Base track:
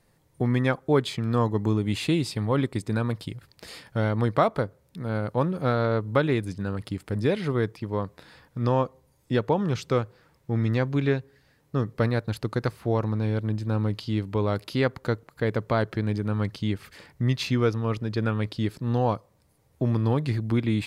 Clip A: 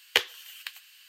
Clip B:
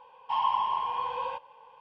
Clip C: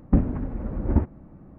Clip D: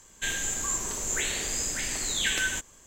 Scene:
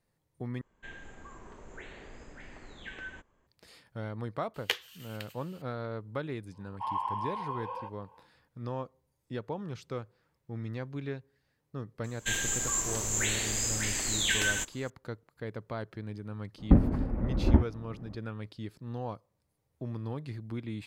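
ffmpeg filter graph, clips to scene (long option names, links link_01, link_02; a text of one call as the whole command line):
ffmpeg -i bed.wav -i cue0.wav -i cue1.wav -i cue2.wav -i cue3.wav -filter_complex "[4:a]asplit=2[link_01][link_02];[0:a]volume=-13.5dB[link_03];[link_01]lowpass=1600[link_04];[2:a]equalizer=frequency=3400:width=1:gain=-10[link_05];[link_03]asplit=2[link_06][link_07];[link_06]atrim=end=0.614[link_08];[link_04]atrim=end=2.86,asetpts=PTS-STARTPTS,volume=-10.5dB[link_09];[link_07]atrim=start=3.466[link_10];[1:a]atrim=end=1.08,asetpts=PTS-STARTPTS,volume=-7.5dB,afade=type=in:duration=0.004:curve=hsin,afade=type=out:start_time=1.076:duration=0.004:curve=hsin,adelay=4540[link_11];[link_05]atrim=end=1.8,asetpts=PTS-STARTPTS,volume=-5.5dB,afade=type=in:duration=0.1,afade=type=out:start_time=1.7:duration=0.1,adelay=6510[link_12];[link_02]atrim=end=2.86,asetpts=PTS-STARTPTS,volume=-1dB,afade=type=in:duration=0.004:curve=hsin,afade=type=out:start_time=2.856:duration=0.004:curve=hsin,adelay=12040[link_13];[3:a]atrim=end=1.58,asetpts=PTS-STARTPTS,volume=-1dB,afade=type=in:duration=0.004:curve=hsin,afade=type=out:start_time=1.576:duration=0.004:curve=hsin,adelay=16580[link_14];[link_08][link_09]acrossfade=duration=0.004:curve1=hsin:curve2=hsin[link_15];[link_15][link_10]acrossfade=duration=0.004:curve1=hsin:curve2=hsin[link_16];[link_16][link_11][link_12][link_13][link_14]amix=inputs=5:normalize=0" out.wav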